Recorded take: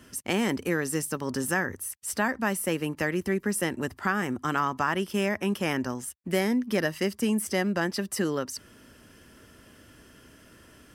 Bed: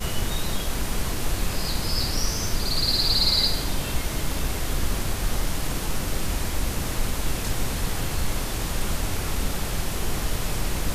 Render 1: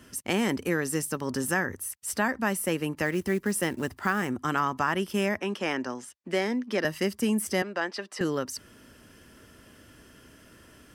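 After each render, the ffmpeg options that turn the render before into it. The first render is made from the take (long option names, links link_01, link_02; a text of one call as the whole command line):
ffmpeg -i in.wav -filter_complex "[0:a]asettb=1/sr,asplit=3[link_01][link_02][link_03];[link_01]atrim=end=3.054[link_04];[link_02]atrim=start=3.05:end=4.29,asetpts=PTS-STARTPTS,afade=type=in:duration=0.004:curve=qsin,afade=type=out:start_time=1.236:duration=0.004:curve=qsin,acrusher=bits=6:mode=log:mix=0:aa=0.000001[link_05];[link_03]atrim=start=4.286[link_06];[link_04][link_05]acrossfade=duration=0.004:curve1=hsin:curve2=qsin[link_07];[link_07][link_06]acrossfade=duration=0.004:curve1=qsin:curve2=hsin,asettb=1/sr,asplit=3[link_08][link_09][link_10];[link_08]atrim=end=5.394[link_11];[link_09]atrim=start=5.39:end=6.85,asetpts=PTS-STARTPTS,afade=type=in:duration=0.004:curve=qsin,afade=type=out:start_time=1.456:duration=0.004:curve=qsin,acrossover=split=230 7600:gain=0.2 1 0.1[link_12][link_13][link_14];[link_12][link_13][link_14]amix=inputs=3:normalize=0[link_15];[link_10]atrim=start=6.846[link_16];[link_11][link_15]acrossfade=duration=0.004:curve1=hsin:curve2=qsin[link_17];[link_17][link_16]acrossfade=duration=0.004:curve1=qsin:curve2=hsin,asettb=1/sr,asplit=3[link_18][link_19][link_20];[link_18]atrim=end=7.624[link_21];[link_19]atrim=start=7.62:end=8.21,asetpts=PTS-STARTPTS,afade=type=in:duration=0.004:curve=qsin,afade=type=out:start_time=0.586:duration=0.004:curve=qsin,highpass=450,lowpass=4700[link_22];[link_20]atrim=start=8.206[link_23];[link_21][link_22]acrossfade=duration=0.004:curve1=hsin:curve2=qsin[link_24];[link_24][link_23]acrossfade=duration=0.004:curve1=qsin:curve2=hsin" out.wav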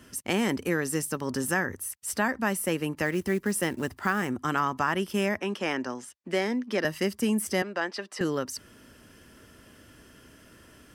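ffmpeg -i in.wav -af anull out.wav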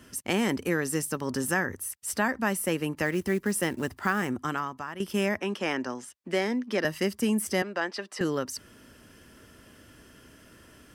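ffmpeg -i in.wav -filter_complex "[0:a]asplit=2[link_01][link_02];[link_01]atrim=end=5,asetpts=PTS-STARTPTS,afade=type=out:start_time=4.38:duration=0.62:curve=qua:silence=0.251189[link_03];[link_02]atrim=start=5,asetpts=PTS-STARTPTS,afade=type=in:duration=0.004:curve=hsin:silence=0.251189[link_04];[link_03][link_04]concat=n=2:v=0:a=1" out.wav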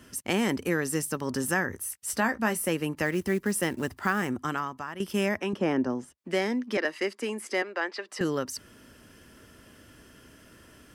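ffmpeg -i in.wav -filter_complex "[0:a]asettb=1/sr,asplit=3[link_01][link_02][link_03];[link_01]atrim=end=1.734[link_04];[link_02]atrim=start=1.73:end=2.69,asetpts=PTS-STARTPTS,afade=type=in:duration=0.004:curve=qsin,afade=type=out:start_time=0.956:duration=0.004:curve=qsin,asplit=2[link_05][link_06];[link_06]adelay=18,volume=-9.5dB[link_07];[link_05][link_07]amix=inputs=2:normalize=0,atrim=end_sample=42336[link_08];[link_03]atrim=start=2.686[link_09];[link_04][link_08]acrossfade=duration=0.004:curve1=hsin:curve2=qsin[link_10];[link_10][link_09]acrossfade=duration=0.004:curve1=qsin:curve2=hsin,asettb=1/sr,asplit=3[link_11][link_12][link_13];[link_11]atrim=end=5.534[link_14];[link_12]atrim=start=5.53:end=6.18,asetpts=PTS-STARTPTS,afade=type=in:duration=0.004:curve=qsin,afade=type=out:start_time=0.646:duration=0.004:curve=qsin,tiltshelf=frequency=860:gain=8.5[link_15];[link_13]atrim=start=6.176[link_16];[link_14][link_15]acrossfade=duration=0.004:curve1=hsin:curve2=qsin[link_17];[link_17][link_16]acrossfade=duration=0.004:curve1=qsin:curve2=hsin,asettb=1/sr,asplit=3[link_18][link_19][link_20];[link_18]atrim=end=6.774[link_21];[link_19]atrim=start=6.77:end=8.09,asetpts=PTS-STARTPTS,afade=type=in:duration=0.004:curve=qsin,afade=type=out:start_time=1.316:duration=0.004:curve=qsin,highpass=frequency=300:width=0.5412,highpass=frequency=300:width=1.3066,equalizer=frequency=660:width_type=q:width=4:gain=-3,equalizer=frequency=2200:width_type=q:width=4:gain=4,equalizer=frequency=3100:width_type=q:width=4:gain=-3,equalizer=frequency=5800:width_type=q:width=4:gain=-7,equalizer=frequency=8400:width_type=q:width=4:gain=-8,lowpass=frequency=9000:width=0.5412,lowpass=frequency=9000:width=1.3066[link_22];[link_20]atrim=start=8.086[link_23];[link_21][link_22]acrossfade=duration=0.004:curve1=hsin:curve2=qsin[link_24];[link_24][link_23]acrossfade=duration=0.004:curve1=qsin:curve2=hsin" out.wav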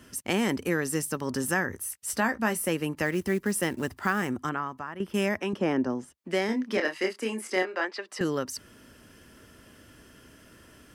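ffmpeg -i in.wav -filter_complex "[0:a]asettb=1/sr,asplit=3[link_01][link_02][link_03];[link_01]atrim=end=4.494[link_04];[link_02]atrim=start=4.49:end=5.14,asetpts=PTS-STARTPTS,afade=type=in:duration=0.004:curve=qsin,afade=type=out:start_time=0.646:duration=0.004:curve=qsin,acrossover=split=2500[link_05][link_06];[link_06]acompressor=threshold=-59dB:ratio=4:attack=1:release=60[link_07];[link_05][link_07]amix=inputs=2:normalize=0[link_08];[link_03]atrim=start=5.136[link_09];[link_04][link_08]acrossfade=duration=0.004:curve1=hsin:curve2=qsin[link_10];[link_10][link_09]acrossfade=duration=0.004:curve1=qsin:curve2=hsin,asettb=1/sr,asplit=3[link_11][link_12][link_13];[link_11]atrim=end=6.464[link_14];[link_12]atrim=start=6.46:end=7.85,asetpts=PTS-STARTPTS,afade=type=in:duration=0.004:curve=qsin,afade=type=out:start_time=1.386:duration=0.004:curve=qsin,asplit=2[link_15][link_16];[link_16]adelay=27,volume=-5dB[link_17];[link_15][link_17]amix=inputs=2:normalize=0,atrim=end_sample=61299[link_18];[link_13]atrim=start=7.846[link_19];[link_14][link_18]acrossfade=duration=0.004:curve1=hsin:curve2=qsin[link_20];[link_20][link_19]acrossfade=duration=0.004:curve1=qsin:curve2=hsin" out.wav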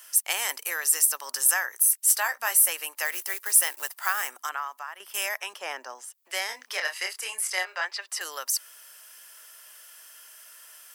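ffmpeg -i in.wav -af "highpass=frequency=700:width=0.5412,highpass=frequency=700:width=1.3066,aemphasis=mode=production:type=75fm" out.wav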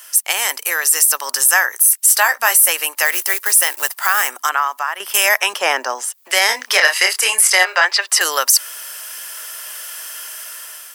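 ffmpeg -i in.wav -af "dynaudnorm=framelen=320:gausssize=5:maxgain=9dB,alimiter=level_in=9.5dB:limit=-1dB:release=50:level=0:latency=1" out.wav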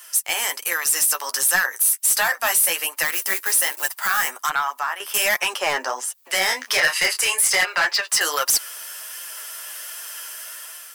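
ffmpeg -i in.wav -af "asoftclip=type=hard:threshold=-10dB,flanger=delay=5.6:depth=6.5:regen=19:speed=1.3:shape=sinusoidal" out.wav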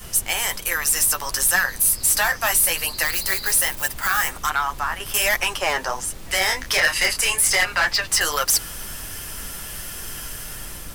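ffmpeg -i in.wav -i bed.wav -filter_complex "[1:a]volume=-12dB[link_01];[0:a][link_01]amix=inputs=2:normalize=0" out.wav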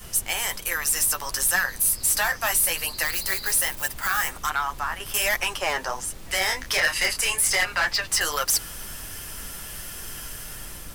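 ffmpeg -i in.wav -af "volume=-3.5dB" out.wav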